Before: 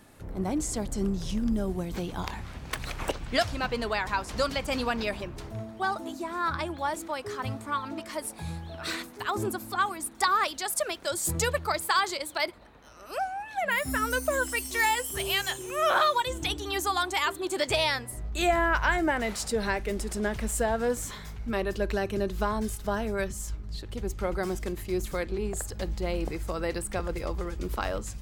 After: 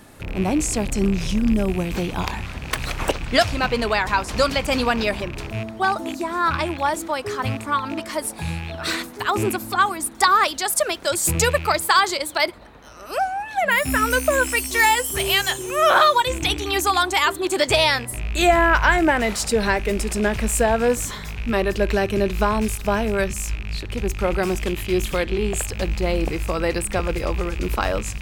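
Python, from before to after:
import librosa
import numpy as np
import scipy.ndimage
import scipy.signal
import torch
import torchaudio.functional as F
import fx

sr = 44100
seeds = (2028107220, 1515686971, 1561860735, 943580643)

y = fx.rattle_buzz(x, sr, strikes_db=-39.0, level_db=-31.0)
y = fx.peak_eq(y, sr, hz=3200.0, db=7.5, octaves=0.36, at=(24.6, 25.67))
y = y * 10.0 ** (8.5 / 20.0)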